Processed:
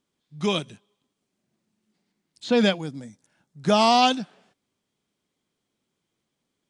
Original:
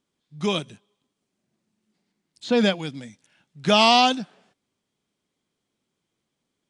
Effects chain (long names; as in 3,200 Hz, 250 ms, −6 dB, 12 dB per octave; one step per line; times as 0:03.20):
0:02.77–0:04.01: parametric band 2,800 Hz −14.5 dB → −7.5 dB 1.3 octaves